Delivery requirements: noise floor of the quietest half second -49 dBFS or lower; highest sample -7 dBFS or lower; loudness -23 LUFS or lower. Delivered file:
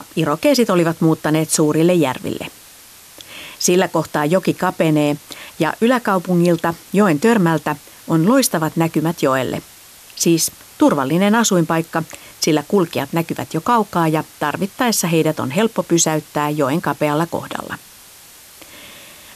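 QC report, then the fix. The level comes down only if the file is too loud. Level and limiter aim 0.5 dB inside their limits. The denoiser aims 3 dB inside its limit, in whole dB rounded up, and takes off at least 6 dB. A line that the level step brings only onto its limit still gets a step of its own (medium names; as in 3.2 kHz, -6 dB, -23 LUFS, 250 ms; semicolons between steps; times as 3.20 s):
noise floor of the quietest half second -43 dBFS: fail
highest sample -4.0 dBFS: fail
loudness -17.0 LUFS: fail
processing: trim -6.5 dB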